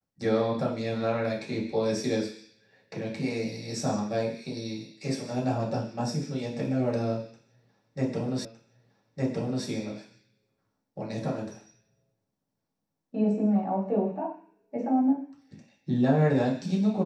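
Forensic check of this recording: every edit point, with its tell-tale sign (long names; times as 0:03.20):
0:08.45: the same again, the last 1.21 s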